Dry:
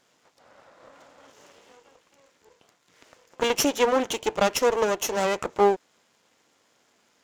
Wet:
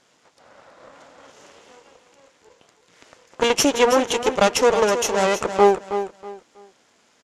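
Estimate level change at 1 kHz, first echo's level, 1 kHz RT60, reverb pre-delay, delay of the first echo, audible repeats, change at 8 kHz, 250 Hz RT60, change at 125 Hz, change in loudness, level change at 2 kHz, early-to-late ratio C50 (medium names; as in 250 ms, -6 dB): +5.5 dB, -10.0 dB, no reverb, no reverb, 321 ms, 3, +5.5 dB, no reverb, +5.5 dB, +5.0 dB, +5.5 dB, no reverb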